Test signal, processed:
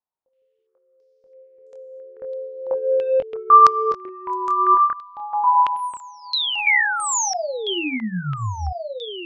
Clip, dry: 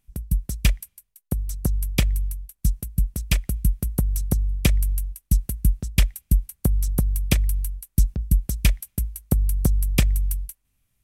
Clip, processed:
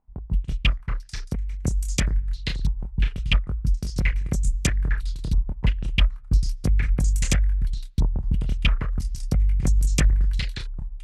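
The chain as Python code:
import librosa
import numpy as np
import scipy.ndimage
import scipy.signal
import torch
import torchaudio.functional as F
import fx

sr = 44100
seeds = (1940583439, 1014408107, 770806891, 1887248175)

p1 = np.clip(x, -10.0 ** (-15.5 / 20.0), 10.0 ** (-15.5 / 20.0))
p2 = x + (p1 * librosa.db_to_amplitude(-9.5))
p3 = fx.chorus_voices(p2, sr, voices=2, hz=0.3, base_ms=24, depth_ms=4.0, mix_pct=35)
p4 = fx.echo_pitch(p3, sr, ms=109, semitones=-3, count=2, db_per_echo=-6.0)
p5 = fx.filter_held_lowpass(p4, sr, hz=3.0, low_hz=930.0, high_hz=7000.0)
y = p5 * librosa.db_to_amplitude(-2.0)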